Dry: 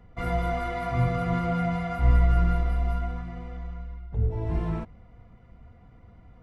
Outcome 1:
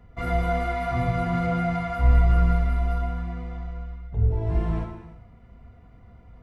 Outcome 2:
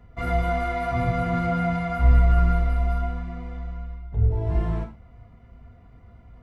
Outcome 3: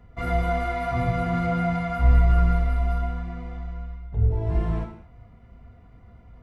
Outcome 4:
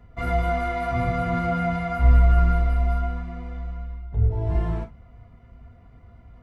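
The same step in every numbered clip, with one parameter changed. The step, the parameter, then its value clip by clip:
non-linear reverb, gate: 410, 140, 250, 80 ms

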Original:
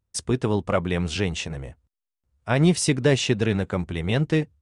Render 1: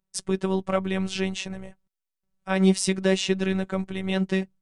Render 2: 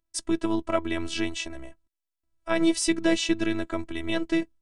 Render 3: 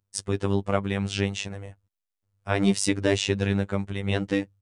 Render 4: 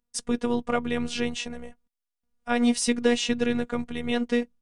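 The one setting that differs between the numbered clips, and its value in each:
robotiser, frequency: 190, 330, 99, 240 Hz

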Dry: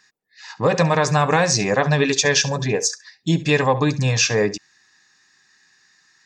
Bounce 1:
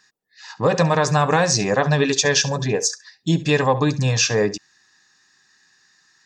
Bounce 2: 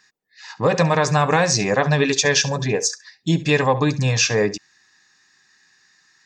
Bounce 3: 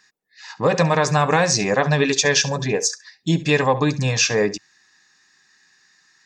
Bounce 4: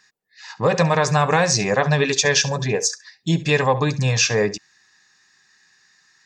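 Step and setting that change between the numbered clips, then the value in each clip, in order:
bell, frequency: 2200, 11000, 110, 290 Hz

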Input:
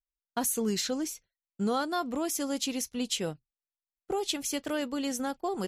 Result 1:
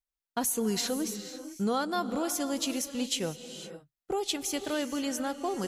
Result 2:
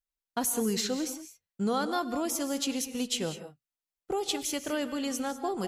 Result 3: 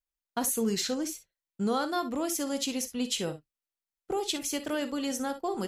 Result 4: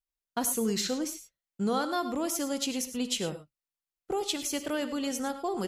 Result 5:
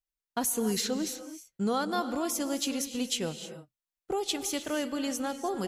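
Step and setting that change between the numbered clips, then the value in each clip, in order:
non-linear reverb, gate: 530, 220, 80, 130, 340 ms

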